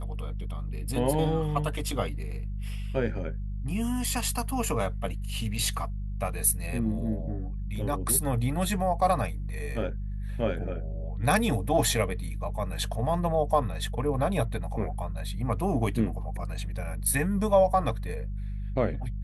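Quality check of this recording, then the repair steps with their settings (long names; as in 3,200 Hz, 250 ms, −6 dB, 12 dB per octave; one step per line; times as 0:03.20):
mains hum 50 Hz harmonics 4 −33 dBFS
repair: hum removal 50 Hz, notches 4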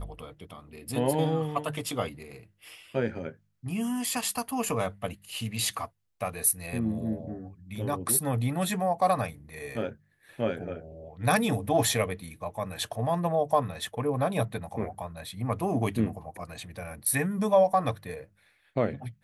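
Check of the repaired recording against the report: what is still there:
none of them is left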